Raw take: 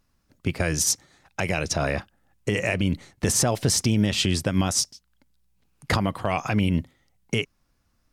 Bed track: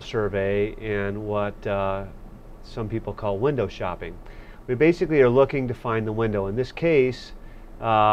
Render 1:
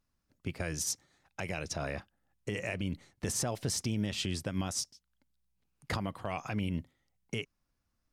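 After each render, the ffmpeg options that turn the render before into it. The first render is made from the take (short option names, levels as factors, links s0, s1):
-af "volume=0.266"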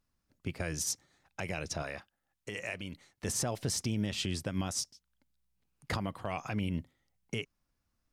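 -filter_complex "[0:a]asettb=1/sr,asplit=3[s0][s1][s2];[s0]atrim=end=1.824[s3];[s1]atrim=start=1.82:end=3.25,asetpts=PTS-STARTPTS,afade=t=in:d=0.004:c=qsin,afade=t=out:st=1.426:d=0.004:c=qsin,lowshelf=f=450:g=-10[s4];[s2]atrim=start=3.246[s5];[s3][s4]acrossfade=d=0.004:c1=hsin:c2=qsin[s6];[s6][s5]acrossfade=d=0.004:c1=qsin:c2=hsin"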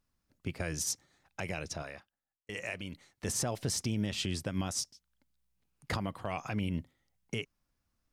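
-filter_complex "[0:a]asplit=2[s0][s1];[s0]atrim=end=2.49,asetpts=PTS-STARTPTS,afade=t=out:st=1.48:d=1.01[s2];[s1]atrim=start=2.49,asetpts=PTS-STARTPTS,afade=t=in:d=0.004:c=hsin[s3];[s2][s3]concat=n=2:v=0:a=1"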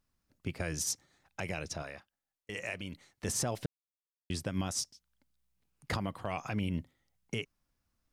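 -filter_complex "[0:a]asplit=3[s0][s1][s2];[s0]atrim=end=3.66,asetpts=PTS-STARTPTS,afade=t=out:st=3.656:d=0.004:c=hsin[s3];[s1]atrim=start=3.66:end=4.3,asetpts=PTS-STARTPTS,volume=0[s4];[s2]atrim=start=4.3,asetpts=PTS-STARTPTS,afade=t=in:d=0.004:c=hsin[s5];[s3][s4][s5]concat=n=3:v=0:a=1"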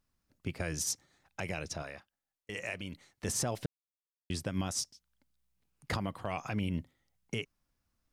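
-af anull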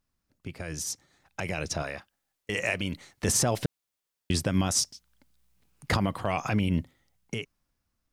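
-af "alimiter=level_in=1.12:limit=0.0631:level=0:latency=1:release=32,volume=0.891,dynaudnorm=f=430:g=7:m=3.35"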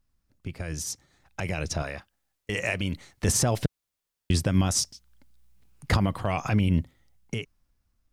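-af "lowshelf=f=92:g=11.5"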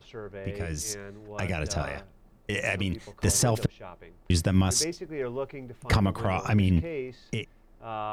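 -filter_complex "[1:a]volume=0.168[s0];[0:a][s0]amix=inputs=2:normalize=0"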